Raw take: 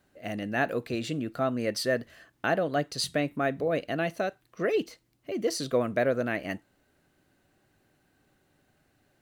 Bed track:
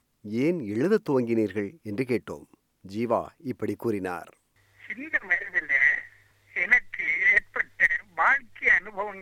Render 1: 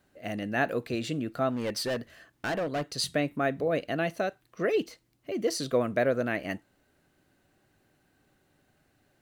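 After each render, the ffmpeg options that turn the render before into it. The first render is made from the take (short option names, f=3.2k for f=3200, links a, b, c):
-filter_complex "[0:a]asettb=1/sr,asplit=3[a][b][c];[a]atrim=end=1.494[d];[b]atrim=start=1.49:end=2.87,asetpts=PTS-STARTPTS,afade=t=in:d=0.004:c=qsin,afade=t=out:st=1.376:d=0.004:c=qsin,asoftclip=type=hard:threshold=-27dB[e];[c]atrim=start=2.866[f];[d][e]acrossfade=d=0.004:c1=hsin:c2=qsin[g];[g][f]acrossfade=d=0.004:c1=qsin:c2=hsin"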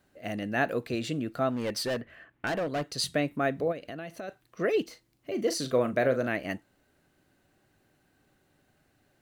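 -filter_complex "[0:a]asettb=1/sr,asplit=3[a][b][c];[a]atrim=end=2.014[d];[b]atrim=start=2.01:end=2.47,asetpts=PTS-STARTPTS,afade=t=in:d=0.004:c=qsin,afade=t=out:st=0.456:d=0.004:c=qsin,highshelf=f=3.5k:t=q:w=1.5:g=-13.5[e];[c]atrim=start=2.466[f];[d][e]acrossfade=d=0.004:c1=hsin:c2=qsin[g];[g][f]acrossfade=d=0.004:c1=qsin:c2=hsin,asplit=3[h][i][j];[h]afade=t=out:st=3.71:d=0.02[k];[i]acompressor=threshold=-37dB:ratio=4:attack=3.2:release=140:knee=1:detection=peak,afade=t=in:st=3.71:d=0.02,afade=t=out:st=4.28:d=0.02[l];[j]afade=t=in:st=4.28:d=0.02[m];[k][l][m]amix=inputs=3:normalize=0,asettb=1/sr,asplit=3[n][o][p];[n]atrim=end=4.844[q];[o]atrim=start=4.84:end=6.28,asetpts=PTS-STARTPTS,afade=t=in:d=0.004:c=qsin,afade=t=out:st=1.436:d=0.004:c=qsin,asplit=2[r][s];[s]adelay=39,volume=-10dB[t];[r][t]amix=inputs=2:normalize=0,atrim=end_sample=63504[u];[p]atrim=start=6.276[v];[q][u]acrossfade=d=0.004:c1=hsin:c2=qsin[w];[w][v]acrossfade=d=0.004:c1=qsin:c2=hsin"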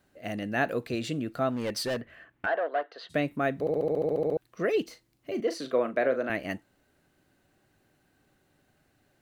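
-filter_complex "[0:a]asplit=3[a][b][c];[a]afade=t=out:st=2.45:d=0.02[d];[b]highpass=f=420:w=0.5412,highpass=f=420:w=1.3066,equalizer=f=690:t=q:w=4:g=6,equalizer=f=1.6k:t=q:w=4:g=6,equalizer=f=2.4k:t=q:w=4:g=-9,lowpass=f=2.9k:w=0.5412,lowpass=f=2.9k:w=1.3066,afade=t=in:st=2.45:d=0.02,afade=t=out:st=3.09:d=0.02[e];[c]afade=t=in:st=3.09:d=0.02[f];[d][e][f]amix=inputs=3:normalize=0,asettb=1/sr,asplit=3[g][h][i];[g]atrim=end=5.404[j];[h]atrim=start=5.4:end=6.3,asetpts=PTS-STARTPTS,afade=t=in:d=0.004:c=qsin,afade=t=out:st=0.896:d=0.004:c=qsin,acrossover=split=220 3600:gain=0.0891 1 0.251[k][l][m];[k][l][m]amix=inputs=3:normalize=0[n];[i]atrim=start=6.296[o];[j][n]acrossfade=d=0.004:c1=hsin:c2=qsin[p];[p][o]acrossfade=d=0.004:c1=qsin:c2=hsin,asplit=12[q][r][s][t][u][v][w][x][y][z][aa][ab];[q]atrim=end=3.672[ac];[r]atrim=start=3.598:end=3.672[ad];[s]atrim=start=3.598:end=3.672[ae];[t]atrim=start=3.598:end=3.672[af];[u]atrim=start=3.598:end=3.672[ag];[v]atrim=start=3.598:end=3.672[ah];[w]atrim=start=3.598:end=3.672[ai];[x]atrim=start=3.598:end=3.672[aj];[y]atrim=start=3.598:end=3.672[ak];[z]atrim=start=3.598:end=3.672[al];[aa]atrim=start=3.598:end=3.672[am];[ab]atrim=start=4.368[an];[ac][ad]acrossfade=d=0.004:c1=hsin:c2=hsin[ao];[ao][ae]acrossfade=d=0.004:c1=hsin:c2=hsin[ap];[ap][af]acrossfade=d=0.004:c1=hsin:c2=hsin[aq];[aq][ag]acrossfade=d=0.004:c1=hsin:c2=hsin[ar];[ar][ah]acrossfade=d=0.004:c1=hsin:c2=hsin[as];[as][ai]acrossfade=d=0.004:c1=hsin:c2=hsin[at];[at][aj]acrossfade=d=0.004:c1=hsin:c2=hsin[au];[au][ak]acrossfade=d=0.004:c1=hsin:c2=hsin[av];[av][al]acrossfade=d=0.004:c1=hsin:c2=hsin[aw];[aw][am]acrossfade=d=0.004:c1=hsin:c2=hsin[ax];[ax][an]acrossfade=d=0.004:c1=hsin:c2=hsin"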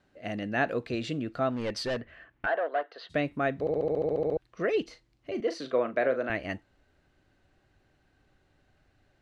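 -af "lowpass=5.3k,asubboost=boost=3.5:cutoff=86"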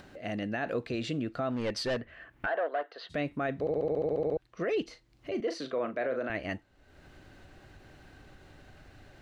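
-af "alimiter=limit=-23dB:level=0:latency=1:release=27,acompressor=mode=upward:threshold=-40dB:ratio=2.5"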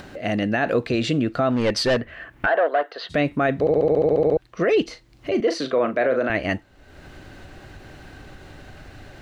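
-af "volume=11.5dB"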